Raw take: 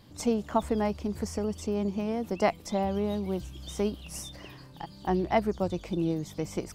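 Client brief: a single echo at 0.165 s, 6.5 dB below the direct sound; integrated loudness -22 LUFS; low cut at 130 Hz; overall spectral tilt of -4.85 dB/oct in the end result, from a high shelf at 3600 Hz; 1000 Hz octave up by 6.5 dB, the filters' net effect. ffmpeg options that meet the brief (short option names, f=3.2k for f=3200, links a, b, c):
-af "highpass=130,equalizer=f=1k:t=o:g=8.5,highshelf=f=3.6k:g=6.5,aecho=1:1:165:0.473,volume=5.5dB"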